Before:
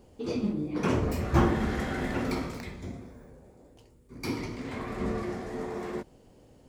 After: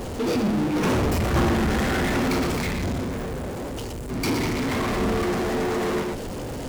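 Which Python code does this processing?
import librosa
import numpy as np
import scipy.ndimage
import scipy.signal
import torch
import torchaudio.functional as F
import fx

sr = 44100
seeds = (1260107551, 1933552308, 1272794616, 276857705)

y = x + 10.0 ** (-11.0 / 20.0) * np.pad(x, (int(119 * sr / 1000.0), 0))[:len(x)]
y = fx.power_curve(y, sr, exponent=0.35)
y = y * librosa.db_to_amplitude(-5.0)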